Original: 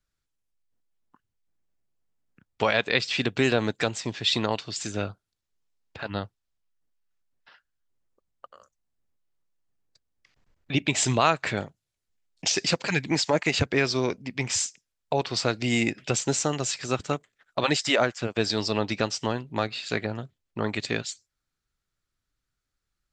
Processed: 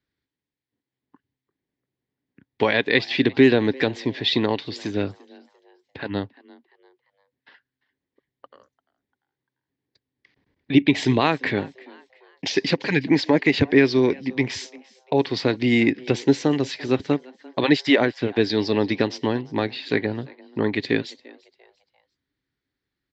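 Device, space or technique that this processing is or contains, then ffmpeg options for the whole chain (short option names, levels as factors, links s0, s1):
frequency-shifting delay pedal into a guitar cabinet: -filter_complex "[0:a]asplit=4[s0][s1][s2][s3];[s1]adelay=345,afreqshift=130,volume=0.0708[s4];[s2]adelay=690,afreqshift=260,volume=0.0275[s5];[s3]adelay=1035,afreqshift=390,volume=0.0107[s6];[s0][s4][s5][s6]amix=inputs=4:normalize=0,highpass=88,equalizer=f=280:t=q:w=4:g=9,equalizer=f=400:t=q:w=4:g=5,equalizer=f=650:t=q:w=4:g=-5,equalizer=f=1300:t=q:w=4:g=-10,equalizer=f=1900:t=q:w=4:g=5,equalizer=f=2700:t=q:w=4:g=-4,lowpass=f=4300:w=0.5412,lowpass=f=4300:w=1.3066,volume=1.5"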